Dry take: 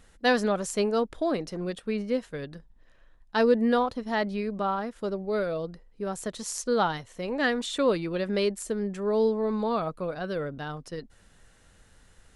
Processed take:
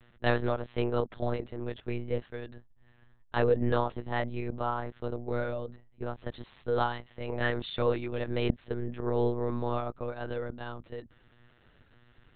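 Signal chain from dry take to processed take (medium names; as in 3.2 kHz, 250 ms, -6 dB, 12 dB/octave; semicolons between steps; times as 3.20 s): monotone LPC vocoder at 8 kHz 120 Hz; trim -3.5 dB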